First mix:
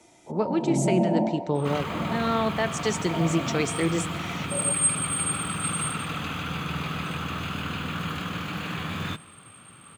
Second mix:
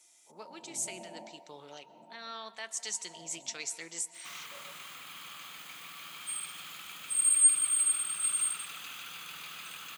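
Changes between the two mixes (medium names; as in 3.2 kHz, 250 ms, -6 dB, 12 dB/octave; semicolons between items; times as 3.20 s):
second sound: entry +2.60 s; master: add differentiator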